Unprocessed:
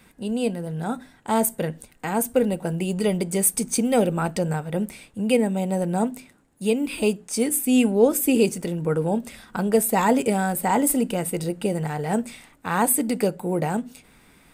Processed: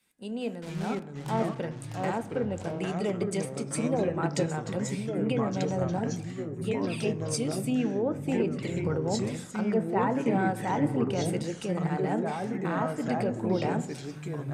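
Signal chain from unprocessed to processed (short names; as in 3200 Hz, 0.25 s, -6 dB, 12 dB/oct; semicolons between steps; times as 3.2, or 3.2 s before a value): low shelf 86 Hz -12 dB; 0.62–1.49 requantised 6-bit, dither none; 3.65–4.06 spectral gain 1200–7200 Hz -12 dB; in parallel at +2.5 dB: compressor, threshold -33 dBFS, peak gain reduction 19.5 dB; 5.97–7.6 on the sum: envelope flanger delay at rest 3.6 ms, full sweep at -16.5 dBFS; treble ducked by the level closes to 2200 Hz, closed at -14.5 dBFS; limiter -13 dBFS, peak gain reduction 7.5 dB; reverb RT60 2.0 s, pre-delay 4 ms, DRR 12.5 dB; echoes that change speed 0.415 s, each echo -3 st, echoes 3; three-band expander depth 70%; gain -8 dB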